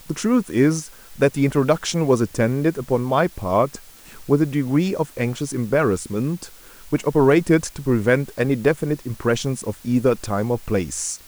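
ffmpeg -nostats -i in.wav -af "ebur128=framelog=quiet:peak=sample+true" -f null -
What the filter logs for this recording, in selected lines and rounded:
Integrated loudness:
  I:         -20.7 LUFS
  Threshold: -31.0 LUFS
Loudness range:
  LRA:         2.1 LU
  Threshold: -41.0 LUFS
  LRA low:   -22.1 LUFS
  LRA high:  -20.1 LUFS
Sample peak:
  Peak:       -3.9 dBFS
True peak:
  Peak:       -3.9 dBFS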